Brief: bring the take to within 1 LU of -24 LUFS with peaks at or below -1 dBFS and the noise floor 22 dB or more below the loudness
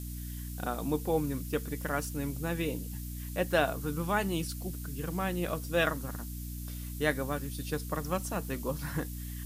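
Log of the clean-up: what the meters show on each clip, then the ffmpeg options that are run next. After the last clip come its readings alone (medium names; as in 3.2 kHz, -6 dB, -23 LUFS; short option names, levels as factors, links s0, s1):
hum 60 Hz; highest harmonic 300 Hz; hum level -37 dBFS; noise floor -40 dBFS; noise floor target -56 dBFS; loudness -33.5 LUFS; peak level -13.0 dBFS; loudness target -24.0 LUFS
-> -af "bandreject=f=60:t=h:w=6,bandreject=f=120:t=h:w=6,bandreject=f=180:t=h:w=6,bandreject=f=240:t=h:w=6,bandreject=f=300:t=h:w=6"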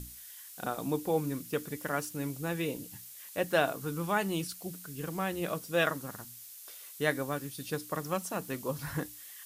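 hum not found; noise floor -49 dBFS; noise floor target -56 dBFS
-> -af "afftdn=nr=7:nf=-49"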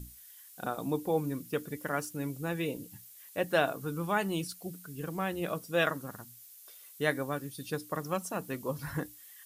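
noise floor -53 dBFS; noise floor target -56 dBFS
-> -af "afftdn=nr=6:nf=-53"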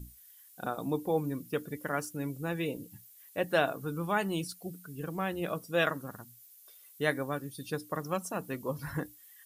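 noise floor -57 dBFS; loudness -34.0 LUFS; peak level -13.5 dBFS; loudness target -24.0 LUFS
-> -af "volume=3.16"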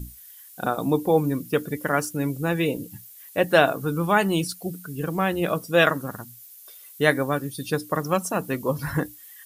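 loudness -24.0 LUFS; peak level -3.5 dBFS; noise floor -47 dBFS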